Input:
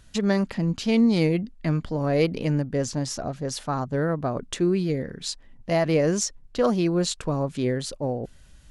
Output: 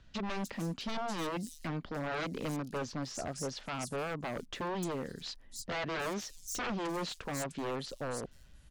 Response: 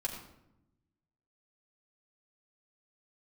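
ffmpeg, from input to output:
-filter_complex "[0:a]acrossover=split=190[a][b];[a]acompressor=threshold=-40dB:ratio=6[c];[c][b]amix=inputs=2:normalize=0,aeval=exprs='0.0596*(abs(mod(val(0)/0.0596+3,4)-2)-1)':c=same,acrossover=split=5500[d][e];[e]adelay=300[f];[d][f]amix=inputs=2:normalize=0,volume=-6dB"

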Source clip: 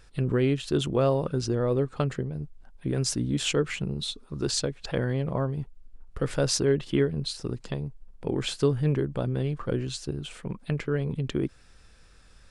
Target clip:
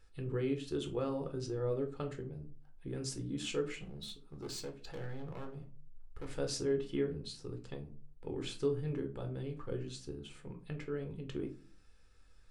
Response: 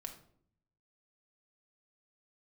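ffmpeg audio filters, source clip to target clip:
-filter_complex "[0:a]asettb=1/sr,asplit=3[a][b][c];[a]atrim=end=3.804[d];[b]atrim=start=3.8:end=6.35,asetpts=PTS-STARTPTS,afade=t=in:d=0.004:c=qsin,afade=t=out:st=2.546:d=0.004:c=qsin,asoftclip=type=hard:threshold=-28dB[e];[c]atrim=start=6.346[f];[d][e]acrossfade=d=0.004:c1=hsin:c2=qsin[g];[g][f]acrossfade=d=0.004:c1=qsin:c2=hsin[h];[1:a]atrim=start_sample=2205,asetrate=83790,aresample=44100[i];[h][i]afir=irnorm=-1:irlink=0,volume=-3.5dB"

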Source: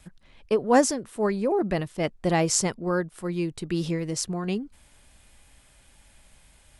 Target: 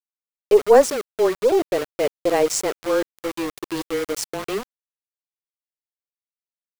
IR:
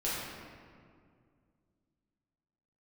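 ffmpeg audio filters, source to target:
-af "highpass=f=460:t=q:w=3.4,areverse,acompressor=mode=upward:threshold=-21dB:ratio=2.5,areverse,afreqshift=-19,aeval=exprs='val(0)*gte(abs(val(0)),0.0562)':c=same,aeval=exprs='0.794*(cos(1*acos(clip(val(0)/0.794,-1,1)))-cos(1*PI/2))+0.0562*(cos(2*acos(clip(val(0)/0.794,-1,1)))-cos(2*PI/2))+0.00501*(cos(6*acos(clip(val(0)/0.794,-1,1)))-cos(6*PI/2))':c=same"

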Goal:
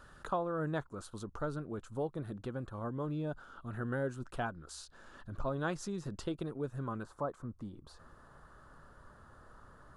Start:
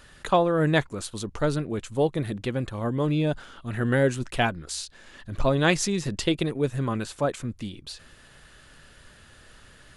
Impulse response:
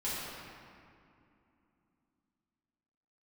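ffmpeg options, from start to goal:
-af "asetnsamples=n=441:p=0,asendcmd='7.03 highshelf g -13',highshelf=f=1.7k:t=q:w=3:g=-6.5,acompressor=threshold=-45dB:ratio=1.5,volume=-4.5dB"

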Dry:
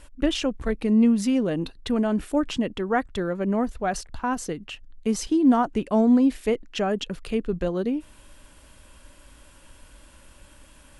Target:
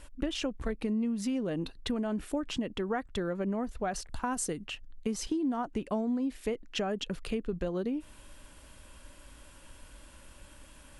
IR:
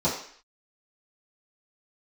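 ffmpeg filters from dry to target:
-filter_complex "[0:a]asettb=1/sr,asplit=3[a][b][c];[a]atrim=end=4.094[d];[b]atrim=start=4.09:end=4.62,asetpts=PTS-STARTPTS,afade=t=in:d=0.004:c=qsin,afade=t=out:st=0.526:d=0.004:c=qsin,equalizer=f=9.2k:w=1.5:g=12.5[e];[c]atrim=start=4.616[f];[d][e]acrossfade=d=0.004:c1=hsin:c2=qsin[g];[g][f]acrossfade=d=0.004:c1=qsin:c2=hsin,acompressor=threshold=-27dB:ratio=6,volume=-2dB"

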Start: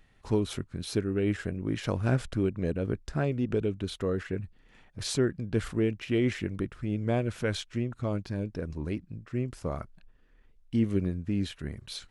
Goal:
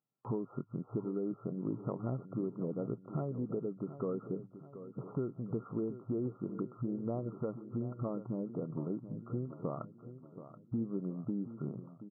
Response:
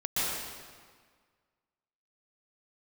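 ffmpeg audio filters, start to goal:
-af "afftfilt=real='re*between(b*sr/4096,110,1400)':imag='im*between(b*sr/4096,110,1400)':win_size=4096:overlap=0.75,agate=range=-27dB:threshold=-54dB:ratio=16:detection=peak,acompressor=threshold=-36dB:ratio=5,aecho=1:1:729|1458|2187|2916|3645:0.224|0.112|0.056|0.028|0.014,volume=2dB"

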